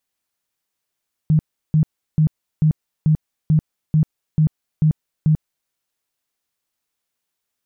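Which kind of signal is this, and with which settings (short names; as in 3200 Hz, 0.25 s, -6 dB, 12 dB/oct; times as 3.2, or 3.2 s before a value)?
tone bursts 155 Hz, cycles 14, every 0.44 s, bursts 10, -11 dBFS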